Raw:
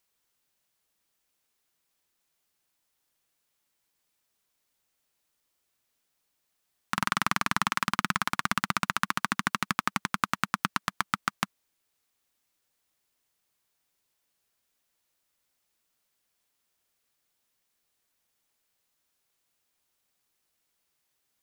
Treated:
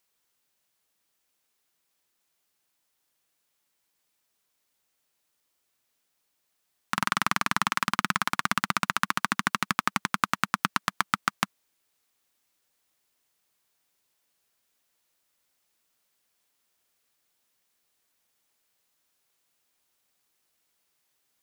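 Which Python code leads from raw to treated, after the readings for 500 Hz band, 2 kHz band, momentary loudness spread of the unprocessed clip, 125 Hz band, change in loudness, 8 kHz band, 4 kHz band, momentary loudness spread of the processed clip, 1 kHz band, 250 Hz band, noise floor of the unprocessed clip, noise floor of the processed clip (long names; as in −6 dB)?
+1.5 dB, +2.0 dB, 4 LU, 0.0 dB, +2.0 dB, +2.0 dB, +2.0 dB, 3 LU, +2.0 dB, +0.5 dB, −78 dBFS, −77 dBFS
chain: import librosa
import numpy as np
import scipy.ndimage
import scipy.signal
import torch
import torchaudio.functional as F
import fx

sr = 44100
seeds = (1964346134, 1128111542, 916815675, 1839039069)

p1 = fx.low_shelf(x, sr, hz=110.0, db=-6.0)
p2 = fx.rider(p1, sr, range_db=10, speed_s=0.5)
p3 = p1 + F.gain(torch.from_numpy(p2), -2.0).numpy()
y = F.gain(torch.from_numpy(p3), -3.0).numpy()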